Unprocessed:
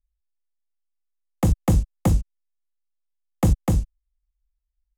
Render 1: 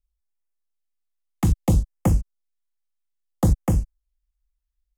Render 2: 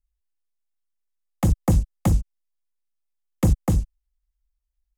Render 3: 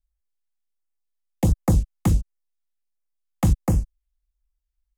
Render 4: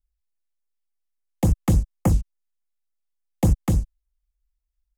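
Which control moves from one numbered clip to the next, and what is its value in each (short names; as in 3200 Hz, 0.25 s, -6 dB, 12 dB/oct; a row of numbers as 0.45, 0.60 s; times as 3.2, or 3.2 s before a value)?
LFO notch, rate: 0.61, 9.6, 1.4, 3.5 Hz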